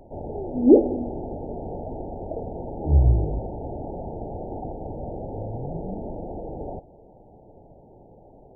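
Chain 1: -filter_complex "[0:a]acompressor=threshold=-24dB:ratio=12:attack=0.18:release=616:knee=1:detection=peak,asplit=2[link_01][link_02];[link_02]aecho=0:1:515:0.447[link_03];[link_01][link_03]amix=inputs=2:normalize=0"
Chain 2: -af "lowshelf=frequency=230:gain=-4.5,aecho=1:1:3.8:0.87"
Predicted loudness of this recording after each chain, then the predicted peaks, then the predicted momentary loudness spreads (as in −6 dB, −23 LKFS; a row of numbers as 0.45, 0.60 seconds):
−33.5, −26.0 LKFS; −20.5, −1.5 dBFS; 18, 16 LU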